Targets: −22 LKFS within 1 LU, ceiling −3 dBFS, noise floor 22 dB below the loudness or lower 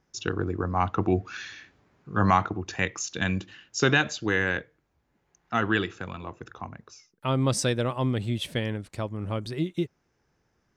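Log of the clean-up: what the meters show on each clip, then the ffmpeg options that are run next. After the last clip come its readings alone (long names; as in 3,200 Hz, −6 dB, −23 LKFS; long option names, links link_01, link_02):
integrated loudness −27.5 LKFS; sample peak −7.0 dBFS; target loudness −22.0 LKFS
→ -af "volume=5.5dB,alimiter=limit=-3dB:level=0:latency=1"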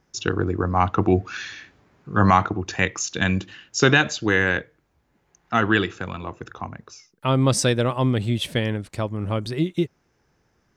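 integrated loudness −22.5 LKFS; sample peak −3.0 dBFS; background noise floor −68 dBFS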